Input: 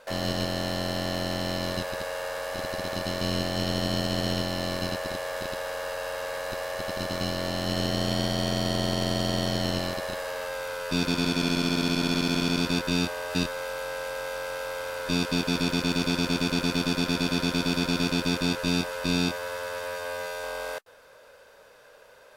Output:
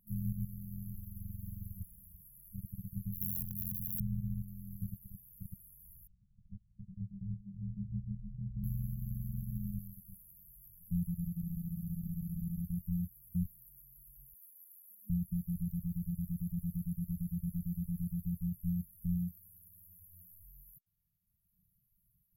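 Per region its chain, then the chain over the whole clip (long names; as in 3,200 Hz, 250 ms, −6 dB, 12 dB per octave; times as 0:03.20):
0:00.95–0:02.21: lower of the sound and its delayed copy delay 3.3 ms + parametric band 68 Hz +2.5 dB 1.5 octaves
0:03.12–0:04.00: high-shelf EQ 8,500 Hz +5.5 dB + wrap-around overflow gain 19.5 dB
0:06.07–0:08.64: Butterworth low-pass 510 Hz 96 dB per octave + micro pitch shift up and down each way 55 cents
0:14.34–0:15.10: Butterworth high-pass 190 Hz 72 dB per octave + comb filter 2.7 ms, depth 46%
whole clip: brick-wall band-stop 210–11,000 Hz; reverb reduction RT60 2 s; dynamic equaliser 240 Hz, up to −7 dB, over −52 dBFS, Q 2.8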